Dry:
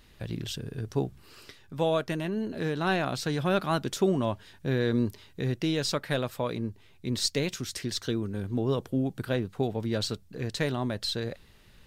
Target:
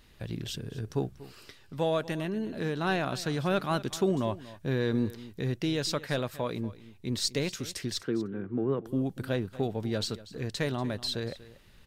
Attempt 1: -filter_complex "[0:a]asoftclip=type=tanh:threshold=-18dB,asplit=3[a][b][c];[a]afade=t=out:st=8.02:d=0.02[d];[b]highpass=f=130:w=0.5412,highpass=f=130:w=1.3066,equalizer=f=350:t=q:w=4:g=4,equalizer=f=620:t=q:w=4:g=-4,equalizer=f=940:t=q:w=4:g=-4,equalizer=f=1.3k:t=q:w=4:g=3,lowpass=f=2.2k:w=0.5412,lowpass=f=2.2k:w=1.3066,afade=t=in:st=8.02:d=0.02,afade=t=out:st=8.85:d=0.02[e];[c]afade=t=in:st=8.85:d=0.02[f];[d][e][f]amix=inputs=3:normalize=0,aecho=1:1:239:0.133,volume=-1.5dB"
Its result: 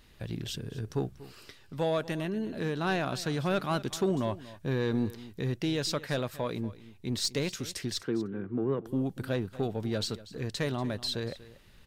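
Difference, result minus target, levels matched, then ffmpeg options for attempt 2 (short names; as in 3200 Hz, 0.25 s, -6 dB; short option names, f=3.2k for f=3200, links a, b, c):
soft clip: distortion +11 dB
-filter_complex "[0:a]asoftclip=type=tanh:threshold=-11.5dB,asplit=3[a][b][c];[a]afade=t=out:st=8.02:d=0.02[d];[b]highpass=f=130:w=0.5412,highpass=f=130:w=1.3066,equalizer=f=350:t=q:w=4:g=4,equalizer=f=620:t=q:w=4:g=-4,equalizer=f=940:t=q:w=4:g=-4,equalizer=f=1.3k:t=q:w=4:g=3,lowpass=f=2.2k:w=0.5412,lowpass=f=2.2k:w=1.3066,afade=t=in:st=8.02:d=0.02,afade=t=out:st=8.85:d=0.02[e];[c]afade=t=in:st=8.85:d=0.02[f];[d][e][f]amix=inputs=3:normalize=0,aecho=1:1:239:0.133,volume=-1.5dB"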